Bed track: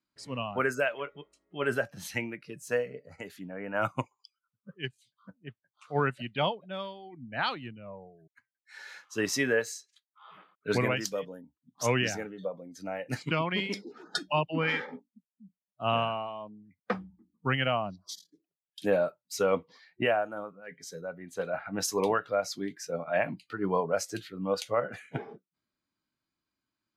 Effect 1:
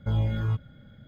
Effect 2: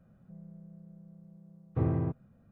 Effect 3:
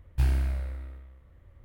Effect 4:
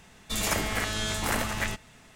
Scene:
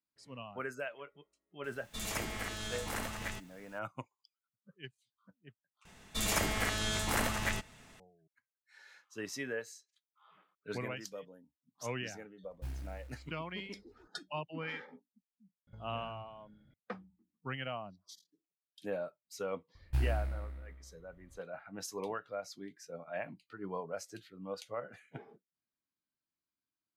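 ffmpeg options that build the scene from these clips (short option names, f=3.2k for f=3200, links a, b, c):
-filter_complex "[4:a]asplit=2[a][b];[3:a]asplit=2[c][d];[0:a]volume=-12dB[e];[a]acrusher=bits=8:mix=0:aa=0.000001[f];[b]acontrast=42[g];[c]acrusher=bits=5:mode=log:mix=0:aa=0.000001[h];[1:a]acompressor=threshold=-33dB:ratio=6:attack=3.2:release=140:knee=1:detection=peak[i];[e]asplit=2[j][k];[j]atrim=end=5.854[l];[g]atrim=end=2.15,asetpts=PTS-STARTPTS,volume=-9.5dB[m];[k]atrim=start=7.996[n];[f]atrim=end=2.15,asetpts=PTS-STARTPTS,volume=-10.5dB,afade=t=in:d=0.004:c=hsin,afade=t=out:st=2.146:d=0.004:c=hsin,adelay=1640[o];[h]atrim=end=1.64,asetpts=PTS-STARTPTS,volume=-17.5dB,afade=t=in:d=0.004:c=hsin,afade=t=out:st=1.636:d=0.004:c=hsin,adelay=12440[p];[i]atrim=end=1.07,asetpts=PTS-STARTPTS,volume=-15.5dB,afade=t=in:d=0.004:c=hsin,afade=t=out:st=1.066:d=0.004:c=hsin,adelay=15670[q];[d]atrim=end=1.64,asetpts=PTS-STARTPTS,volume=-7dB,afade=t=in:d=0.004:c=hsin,afade=t=out:st=1.636:d=0.004:c=hsin,adelay=19750[r];[l][m]acrossfade=d=0.004:c1=hsin:c2=hsin[s];[s][n]acrossfade=d=0.004:c1=hsin:c2=hsin[t];[t][o][p][q][r]amix=inputs=5:normalize=0"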